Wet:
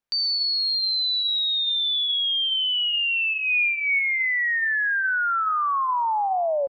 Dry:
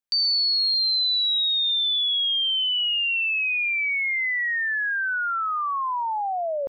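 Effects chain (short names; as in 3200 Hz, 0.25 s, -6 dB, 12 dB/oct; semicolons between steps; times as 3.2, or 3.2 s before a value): high shelf 4200 Hz -11.5 dB; de-hum 261.3 Hz, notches 24; 3.33–3.99 comb 4.1 ms, depth 62%; in parallel at +3 dB: limiter -32 dBFS, peak gain reduction 12 dB; on the sum: frequency-shifting echo 89 ms, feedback 42%, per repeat +92 Hz, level -21.5 dB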